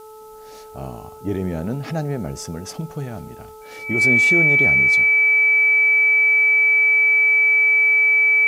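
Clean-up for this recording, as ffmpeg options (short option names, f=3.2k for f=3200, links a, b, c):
-af "bandreject=f=434.2:t=h:w=4,bandreject=f=868.4:t=h:w=4,bandreject=f=1.3026k:t=h:w=4,bandreject=f=2.3k:w=30,agate=range=-21dB:threshold=-32dB"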